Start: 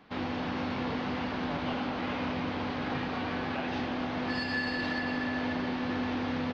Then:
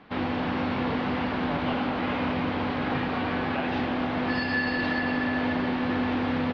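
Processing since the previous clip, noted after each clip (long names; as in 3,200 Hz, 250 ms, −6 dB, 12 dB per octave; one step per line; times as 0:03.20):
low-pass filter 3,700 Hz 12 dB per octave
level +5.5 dB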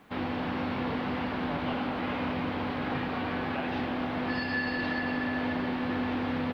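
bit reduction 11 bits
level −4 dB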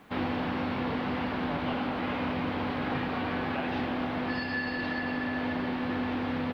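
speech leveller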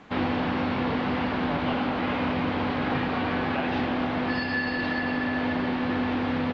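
downsampling to 16,000 Hz
level +4.5 dB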